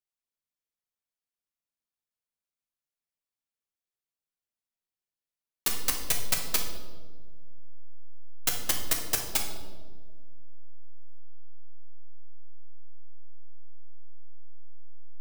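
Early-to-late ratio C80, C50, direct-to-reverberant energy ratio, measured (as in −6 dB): 8.0 dB, 5.5 dB, 1.5 dB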